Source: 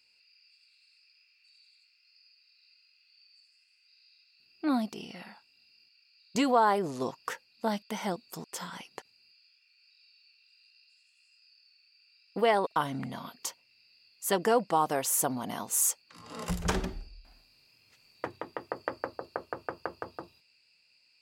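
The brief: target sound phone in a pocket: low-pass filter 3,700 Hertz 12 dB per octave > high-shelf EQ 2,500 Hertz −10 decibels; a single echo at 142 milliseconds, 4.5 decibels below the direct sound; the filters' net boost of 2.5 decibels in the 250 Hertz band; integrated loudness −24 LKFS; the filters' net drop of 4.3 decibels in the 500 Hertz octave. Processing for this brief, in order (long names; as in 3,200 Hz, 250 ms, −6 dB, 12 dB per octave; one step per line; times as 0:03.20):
low-pass filter 3,700 Hz 12 dB per octave
parametric band 250 Hz +4.5 dB
parametric band 500 Hz −6 dB
high-shelf EQ 2,500 Hz −10 dB
single-tap delay 142 ms −4.5 dB
level +8.5 dB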